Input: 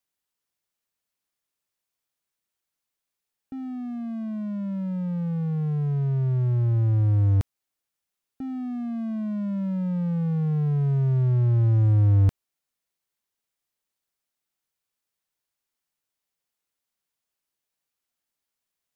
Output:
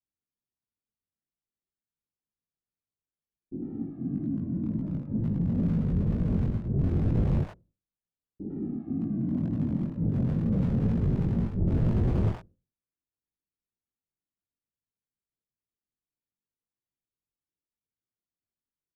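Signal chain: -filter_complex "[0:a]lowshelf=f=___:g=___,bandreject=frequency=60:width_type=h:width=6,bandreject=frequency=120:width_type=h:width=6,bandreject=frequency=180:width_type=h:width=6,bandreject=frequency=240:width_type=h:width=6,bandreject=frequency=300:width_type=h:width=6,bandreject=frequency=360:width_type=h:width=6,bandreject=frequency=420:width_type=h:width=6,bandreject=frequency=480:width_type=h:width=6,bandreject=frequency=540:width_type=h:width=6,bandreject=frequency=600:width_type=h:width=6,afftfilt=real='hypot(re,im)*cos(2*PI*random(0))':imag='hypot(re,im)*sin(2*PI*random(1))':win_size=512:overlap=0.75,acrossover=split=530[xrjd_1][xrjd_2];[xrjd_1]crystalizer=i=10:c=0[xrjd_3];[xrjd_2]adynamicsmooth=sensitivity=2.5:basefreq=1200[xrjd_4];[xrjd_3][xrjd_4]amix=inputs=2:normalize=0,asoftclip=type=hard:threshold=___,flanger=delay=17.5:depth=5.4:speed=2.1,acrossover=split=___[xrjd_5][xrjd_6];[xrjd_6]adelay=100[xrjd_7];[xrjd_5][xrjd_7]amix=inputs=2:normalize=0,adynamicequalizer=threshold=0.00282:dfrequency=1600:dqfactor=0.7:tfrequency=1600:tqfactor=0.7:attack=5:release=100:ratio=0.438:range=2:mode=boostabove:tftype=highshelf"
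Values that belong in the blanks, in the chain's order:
360, 11, -19.5dB, 670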